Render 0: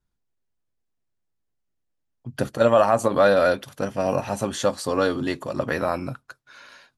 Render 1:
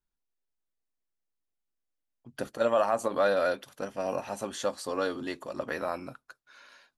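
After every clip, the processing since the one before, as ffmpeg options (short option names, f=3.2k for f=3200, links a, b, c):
-af "equalizer=f=110:t=o:w=1.4:g=-12,volume=-7.5dB"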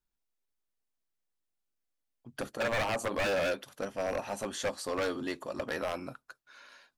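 -af "aeval=exprs='0.0596*(abs(mod(val(0)/0.0596+3,4)-2)-1)':c=same"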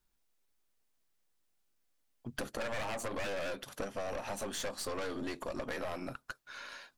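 -af "aeval=exprs='(tanh(56.2*val(0)+0.6)-tanh(0.6))/56.2':c=same,acompressor=threshold=-46dB:ratio=5,volume=10.5dB"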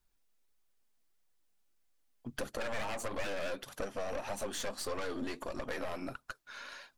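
-af "flanger=delay=0.8:depth=4.3:regen=63:speed=1.6:shape=triangular,volume=4dB"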